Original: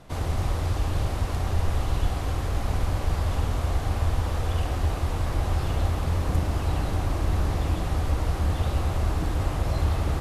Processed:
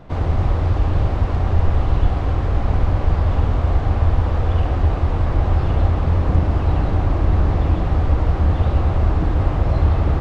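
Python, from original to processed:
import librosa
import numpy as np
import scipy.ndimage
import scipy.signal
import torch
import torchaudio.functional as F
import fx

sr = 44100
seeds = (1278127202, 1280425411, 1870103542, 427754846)

y = fx.spacing_loss(x, sr, db_at_10k=28)
y = F.gain(torch.from_numpy(y), 8.5).numpy()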